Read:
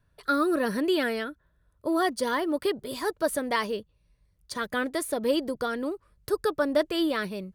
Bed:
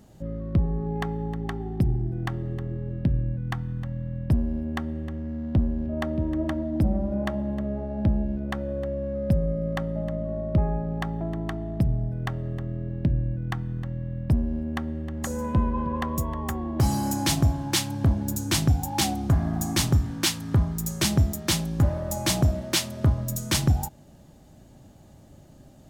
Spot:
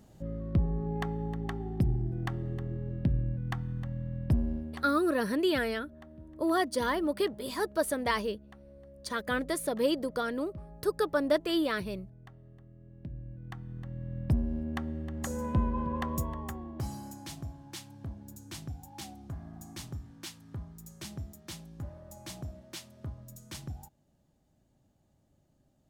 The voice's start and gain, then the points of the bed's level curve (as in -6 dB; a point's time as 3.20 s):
4.55 s, -2.5 dB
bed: 4.51 s -4.5 dB
5.13 s -23 dB
12.74 s -23 dB
14.20 s -5 dB
16.21 s -5 dB
17.21 s -19.5 dB